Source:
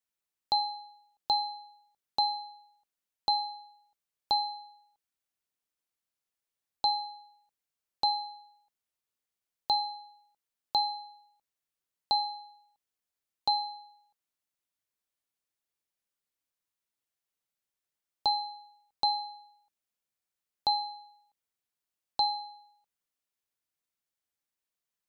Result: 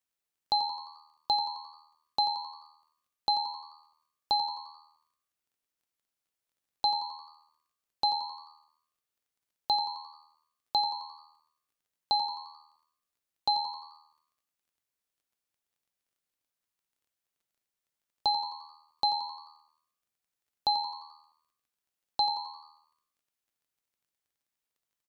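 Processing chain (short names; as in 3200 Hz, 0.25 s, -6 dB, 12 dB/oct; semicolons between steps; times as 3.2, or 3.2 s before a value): frequency-shifting echo 87 ms, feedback 48%, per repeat +78 Hz, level -11 dB; crackle 19/s -65 dBFS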